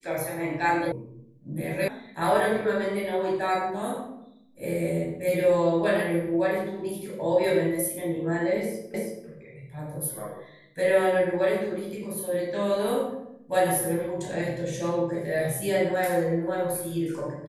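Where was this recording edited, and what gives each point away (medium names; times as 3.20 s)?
0.92 s: sound stops dead
1.88 s: sound stops dead
8.94 s: repeat of the last 0.33 s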